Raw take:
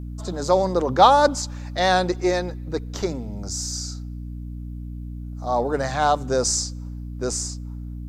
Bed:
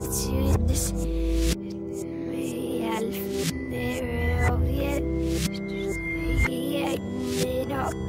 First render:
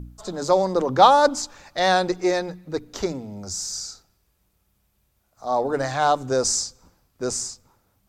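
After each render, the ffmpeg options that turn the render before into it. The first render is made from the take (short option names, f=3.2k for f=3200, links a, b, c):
-af "bandreject=f=60:t=h:w=4,bandreject=f=120:t=h:w=4,bandreject=f=180:t=h:w=4,bandreject=f=240:t=h:w=4,bandreject=f=300:t=h:w=4"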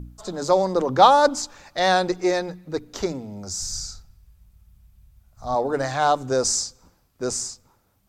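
-filter_complex "[0:a]asplit=3[a][b][c];[a]afade=t=out:st=3.59:d=0.02[d];[b]asubboost=boost=12:cutoff=110,afade=t=in:st=3.59:d=0.02,afade=t=out:st=5.54:d=0.02[e];[c]afade=t=in:st=5.54:d=0.02[f];[d][e][f]amix=inputs=3:normalize=0"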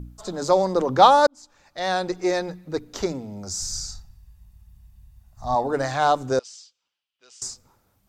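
-filter_complex "[0:a]asettb=1/sr,asplit=3[a][b][c];[a]atrim=end=3.884[d];[b]atrim=start=3.88:end=5.67,asetpts=PTS-STARTPTS,afade=t=in:d=0.004:c=qsin,afade=t=out:st=1.786:d=0.004:c=qsin,aecho=1:1:1.1:0.49,atrim=end_sample=78939[e];[c]atrim=start=5.666[f];[d][e]acrossfade=d=0.004:c1=hsin:c2=qsin[g];[g][f]acrossfade=d=0.004:c1=qsin:c2=hsin,asettb=1/sr,asplit=3[h][i][j];[h]atrim=end=6.394[k];[i]atrim=start=6.39:end=7.42,asetpts=PTS-STARTPTS,afade=t=in:d=0.004:c=qsin,afade=t=out:st=1.026:d=0.004:c=qsin,bandpass=f=3k:t=q:w=6.6[l];[j]atrim=start=7.416[m];[k][l]acrossfade=d=0.004:c1=hsin:c2=qsin[n];[n][m]acrossfade=d=0.004:c1=qsin:c2=hsin,asplit=2[o][p];[o]atrim=end=1.27,asetpts=PTS-STARTPTS,afade=t=out:st=1.266:d=0.004:c=hsin[q];[p]atrim=start=1.27,asetpts=PTS-STARTPTS,afade=t=in:d=1.2[r];[q][r]concat=n=2:v=0:a=1"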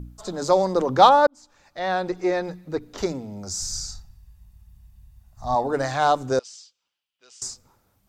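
-filter_complex "[0:a]asettb=1/sr,asplit=3[a][b][c];[a]atrim=end=1.094[d];[b]atrim=start=1.09:end=2.98,asetpts=PTS-STARTPTS,afade=t=in:d=0.004:c=qsin,afade=t=out:st=1.886:d=0.004:c=qsin,acrossover=split=3300[e][f];[f]acompressor=threshold=-48dB:ratio=4:attack=1:release=60[g];[e][g]amix=inputs=2:normalize=0[h];[c]atrim=start=2.976[i];[d][h]acrossfade=d=0.004:c1=hsin:c2=qsin[j];[j][i]acrossfade=d=0.004:c1=qsin:c2=hsin"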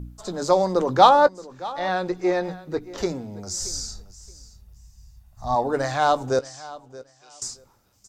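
-filter_complex "[0:a]asplit=2[a][b];[b]adelay=17,volume=-14dB[c];[a][c]amix=inputs=2:normalize=0,aecho=1:1:625|1250:0.119|0.0226"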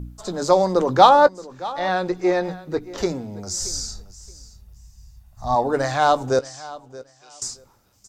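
-af "volume=2.5dB,alimiter=limit=-1dB:level=0:latency=1"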